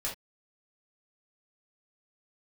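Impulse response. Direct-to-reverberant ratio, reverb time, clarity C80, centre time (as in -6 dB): -5.5 dB, not exponential, 17.5 dB, 24 ms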